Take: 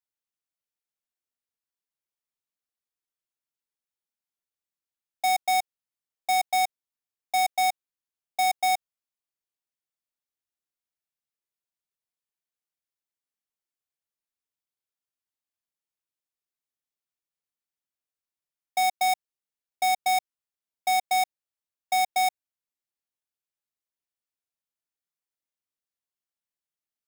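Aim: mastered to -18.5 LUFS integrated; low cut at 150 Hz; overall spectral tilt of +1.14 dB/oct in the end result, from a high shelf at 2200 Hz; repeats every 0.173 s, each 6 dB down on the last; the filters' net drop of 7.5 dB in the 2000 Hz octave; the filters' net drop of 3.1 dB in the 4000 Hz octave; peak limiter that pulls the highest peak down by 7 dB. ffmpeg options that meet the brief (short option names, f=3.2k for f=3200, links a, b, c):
-af "highpass=150,equalizer=f=2k:t=o:g=-9,highshelf=f=2.2k:g=4,equalizer=f=4k:t=o:g=-5.5,alimiter=limit=-23.5dB:level=0:latency=1,aecho=1:1:173|346|519|692|865|1038:0.501|0.251|0.125|0.0626|0.0313|0.0157,volume=16dB"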